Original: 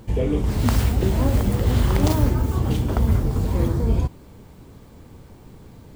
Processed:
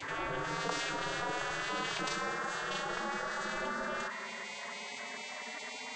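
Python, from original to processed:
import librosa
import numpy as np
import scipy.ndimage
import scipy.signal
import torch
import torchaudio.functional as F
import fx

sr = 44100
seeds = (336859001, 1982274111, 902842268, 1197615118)

p1 = fx.vocoder_glide(x, sr, note=57, semitones=8)
p2 = fx.dmg_noise_band(p1, sr, seeds[0], low_hz=1100.0, high_hz=1800.0, level_db=-53.0)
p3 = 10.0 ** (-25.5 / 20.0) * np.tanh(p2 / 10.0 ** (-25.5 / 20.0))
p4 = p2 + F.gain(torch.from_numpy(p3), -8.0).numpy()
p5 = fx.spec_gate(p4, sr, threshold_db=-25, keep='weak')
y = fx.env_flatten(p5, sr, amount_pct=70)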